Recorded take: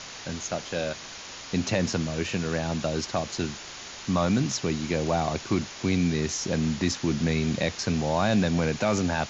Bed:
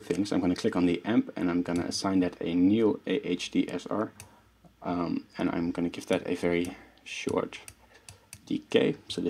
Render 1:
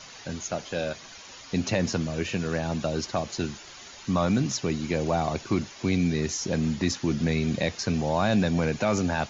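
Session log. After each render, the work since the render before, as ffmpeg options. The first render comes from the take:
ffmpeg -i in.wav -af "afftdn=noise_reduction=9:noise_floor=-41" out.wav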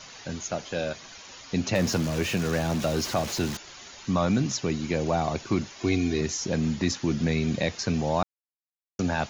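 ffmpeg -i in.wav -filter_complex "[0:a]asettb=1/sr,asplit=3[link_01][link_02][link_03];[link_01]atrim=end=1.754[link_04];[link_02]atrim=start=1.75:end=3.57,asetpts=PTS-STARTPTS,afade=type=in:duration=0.004:curve=qsin,afade=type=out:start_time=1.816:duration=0.004:curve=qsin,aeval=exprs='val(0)+0.5*0.0266*sgn(val(0))':channel_layout=same[link_05];[link_03]atrim=start=3.566[link_06];[link_04][link_05]acrossfade=duration=0.004:curve1=hsin:curve2=qsin[link_07];[link_07][link_06]acrossfade=duration=0.004:curve1=qsin:curve2=hsin,asettb=1/sr,asplit=3[link_08][link_09][link_10];[link_08]atrim=end=5.804[link_11];[link_09]atrim=start=5.8:end=6.21,asetpts=PTS-STARTPTS,afade=type=in:duration=0.004:curve=qsin,afade=type=out:start_time=0.406:duration=0.004:curve=qsin,aecho=1:1:2.8:0.66,atrim=end_sample=18081[link_12];[link_10]atrim=start=6.206[link_13];[link_11][link_12]acrossfade=duration=0.004:curve1=hsin:curve2=qsin[link_14];[link_14][link_13]acrossfade=duration=0.004:curve1=qsin:curve2=hsin,asplit=3[link_15][link_16][link_17];[link_15]atrim=end=8.23,asetpts=PTS-STARTPTS,afade=type=out:start_time=8.226:duration=0.004:curve=hsin[link_18];[link_16]atrim=start=8.23:end=8.99,asetpts=PTS-STARTPTS,volume=0[link_19];[link_17]atrim=start=8.99,asetpts=PTS-STARTPTS,afade=type=in:duration=0.004:curve=hsin[link_20];[link_18][link_19][link_20]concat=n=3:v=0:a=1" out.wav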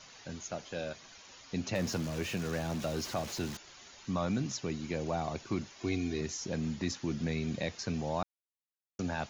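ffmpeg -i in.wav -af "volume=-8.5dB" out.wav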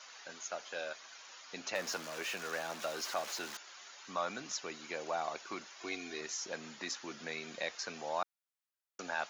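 ffmpeg -i in.wav -af "highpass=590,equalizer=frequency=1400:width=1.9:gain=4.5" out.wav

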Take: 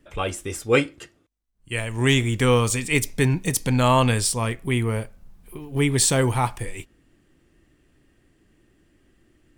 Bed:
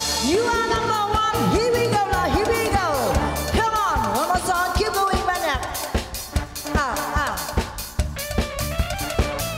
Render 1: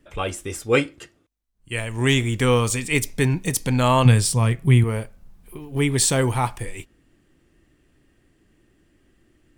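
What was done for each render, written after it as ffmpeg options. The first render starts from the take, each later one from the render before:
ffmpeg -i in.wav -filter_complex "[0:a]asettb=1/sr,asplit=3[link_01][link_02][link_03];[link_01]atrim=end=4.054[link_04];[link_02]atrim=start=4.05:end=4.84,asetpts=PTS-STARTPTS,afade=type=in:duration=0.004:curve=qsin,afade=type=out:start_time=0.786:duration=0.004:curve=qsin,equalizer=frequency=140:width_type=o:width=0.77:gain=14[link_05];[link_03]atrim=start=4.836[link_06];[link_04][link_05]acrossfade=duration=0.004:curve1=hsin:curve2=qsin[link_07];[link_07][link_06]acrossfade=duration=0.004:curve1=qsin:curve2=hsin" out.wav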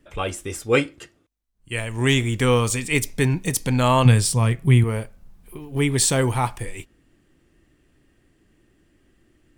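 ffmpeg -i in.wav -af anull out.wav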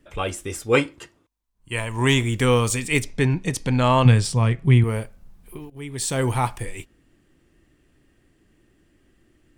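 ffmpeg -i in.wav -filter_complex "[0:a]asettb=1/sr,asplit=3[link_01][link_02][link_03];[link_01]atrim=end=0.744[link_04];[link_02]atrim=start=0.74:end=2.23,asetpts=PTS-STARTPTS,afade=type=in:duration=0.004:curve=qsin,afade=type=out:start_time=1.486:duration=0.004:curve=qsin,equalizer=frequency=980:width_type=o:width=0.34:gain=10[link_05];[link_03]atrim=start=2.226[link_06];[link_04][link_05]acrossfade=duration=0.004:curve1=hsin:curve2=qsin[link_07];[link_07][link_06]acrossfade=duration=0.004:curve1=qsin:curve2=hsin,asettb=1/sr,asplit=3[link_08][link_09][link_10];[link_08]atrim=end=3.024[link_11];[link_09]atrim=start=3.02:end=4.84,asetpts=PTS-STARTPTS,afade=type=in:duration=0.004:curve=qsin,afade=type=out:start_time=1.816:duration=0.004:curve=qsin,adynamicsmooth=sensitivity=0.5:basefreq=6200[link_12];[link_10]atrim=start=4.836[link_13];[link_11][link_12]acrossfade=duration=0.004:curve1=hsin:curve2=qsin[link_14];[link_14][link_13]acrossfade=duration=0.004:curve1=qsin:curve2=hsin,asplit=2[link_15][link_16];[link_15]atrim=end=5.7,asetpts=PTS-STARTPTS,afade=type=out:start_time=5.696:duration=0.004:curve=hsin:silence=0.149624[link_17];[link_16]atrim=start=5.7,asetpts=PTS-STARTPTS,afade=type=in:duration=0.6:curve=qua:silence=0.149624[link_18];[link_17][link_18]concat=n=2:v=0:a=1" out.wav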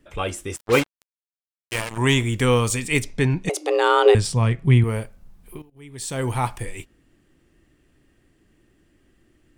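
ffmpeg -i in.wav -filter_complex "[0:a]asettb=1/sr,asplit=3[link_01][link_02][link_03];[link_01]atrim=end=0.564[link_04];[link_02]atrim=start=0.56:end=1.98,asetpts=PTS-STARTPTS,afade=type=in:duration=0.004:curve=qsin,afade=type=out:start_time=1.416:duration=0.004:curve=qsin,acrusher=bits=3:mix=0:aa=0.5[link_05];[link_03]atrim=start=1.976[link_06];[link_04][link_05]acrossfade=duration=0.004:curve1=hsin:curve2=qsin[link_07];[link_07][link_06]acrossfade=duration=0.004:curve1=qsin:curve2=hsin,asettb=1/sr,asplit=3[link_08][link_09][link_10];[link_08]atrim=end=3.494[link_11];[link_09]atrim=start=3.49:end=4.15,asetpts=PTS-STARTPTS,afade=type=in:duration=0.004:curve=qsin,afade=type=out:start_time=0.656:duration=0.004:curve=qsin,afreqshift=290[link_12];[link_10]atrim=start=4.146[link_13];[link_11][link_12]acrossfade=duration=0.004:curve1=hsin:curve2=qsin[link_14];[link_14][link_13]acrossfade=duration=0.004:curve1=qsin:curve2=hsin,asplit=2[link_15][link_16];[link_15]atrim=end=5.62,asetpts=PTS-STARTPTS,afade=type=out:start_time=5.616:duration=0.004:curve=hsin:silence=0.177828[link_17];[link_16]atrim=start=5.62,asetpts=PTS-STARTPTS,afade=type=in:duration=0.92:silence=0.177828[link_18];[link_17][link_18]concat=n=2:v=0:a=1" out.wav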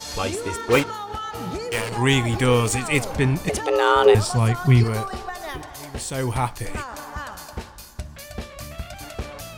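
ffmpeg -i in.wav -i bed.wav -filter_complex "[1:a]volume=-10.5dB[link_01];[0:a][link_01]amix=inputs=2:normalize=0" out.wav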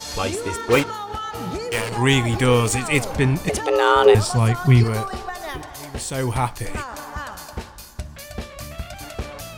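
ffmpeg -i in.wav -af "volume=1.5dB,alimiter=limit=-2dB:level=0:latency=1" out.wav

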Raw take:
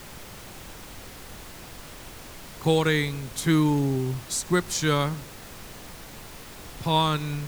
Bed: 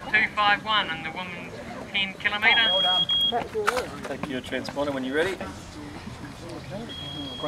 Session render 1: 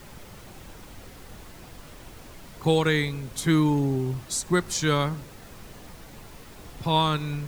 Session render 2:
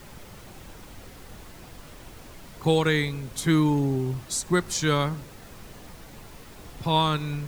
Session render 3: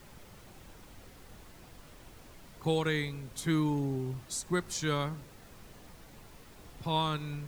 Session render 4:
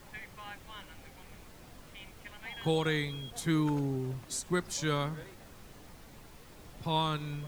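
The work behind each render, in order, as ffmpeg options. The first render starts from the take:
ffmpeg -i in.wav -af "afftdn=noise_reduction=6:noise_floor=-43" out.wav
ffmpeg -i in.wav -af anull out.wav
ffmpeg -i in.wav -af "volume=-8dB" out.wav
ffmpeg -i in.wav -i bed.wav -filter_complex "[1:a]volume=-25.5dB[link_01];[0:a][link_01]amix=inputs=2:normalize=0" out.wav

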